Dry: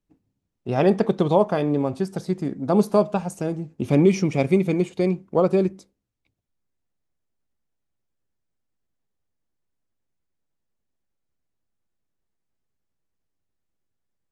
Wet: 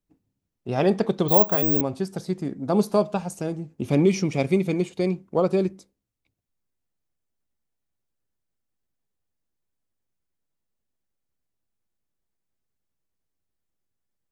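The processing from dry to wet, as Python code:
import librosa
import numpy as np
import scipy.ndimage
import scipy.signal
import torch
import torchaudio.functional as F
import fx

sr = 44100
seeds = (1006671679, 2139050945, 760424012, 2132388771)

y = fx.high_shelf(x, sr, hz=7800.0, db=4.5)
y = fx.resample_bad(y, sr, factor=2, down='none', up='zero_stuff', at=(1.28, 1.81))
y = fx.dynamic_eq(y, sr, hz=4300.0, q=1.2, threshold_db=-46.0, ratio=4.0, max_db=4)
y = y * 10.0 ** (-2.5 / 20.0)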